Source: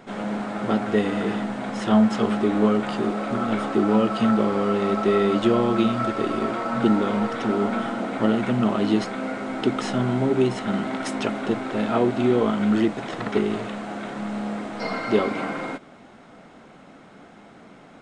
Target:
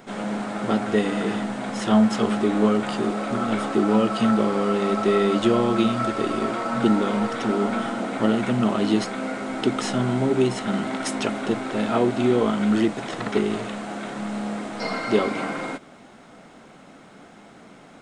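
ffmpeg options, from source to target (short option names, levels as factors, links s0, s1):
-af "highshelf=f=6100:g=10,bandreject=f=50:t=h:w=6,bandreject=f=100:t=h:w=6"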